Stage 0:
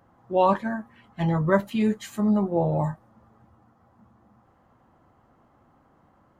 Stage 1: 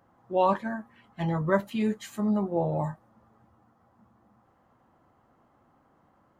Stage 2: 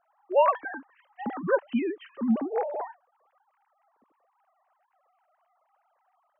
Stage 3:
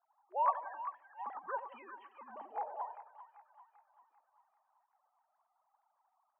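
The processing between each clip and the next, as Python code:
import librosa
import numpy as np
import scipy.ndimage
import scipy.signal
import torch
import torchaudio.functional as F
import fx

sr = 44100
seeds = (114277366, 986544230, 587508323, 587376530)

y1 = fx.low_shelf(x, sr, hz=120.0, db=-5.5)
y1 = y1 * librosa.db_to_amplitude(-3.0)
y2 = fx.sine_speech(y1, sr)
y3 = fx.ladder_bandpass(y2, sr, hz=1000.0, resonance_pct=60)
y3 = fx.echo_split(y3, sr, split_hz=1000.0, low_ms=88, high_ms=392, feedback_pct=52, wet_db=-9.0)
y3 = fx.hpss(y3, sr, part='harmonic', gain_db=-7)
y3 = y3 * librosa.db_to_amplitude(1.5)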